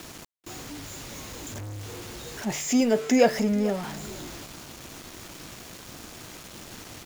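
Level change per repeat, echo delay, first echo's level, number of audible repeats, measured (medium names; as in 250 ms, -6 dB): no regular repeats, 438 ms, -19.0 dB, 1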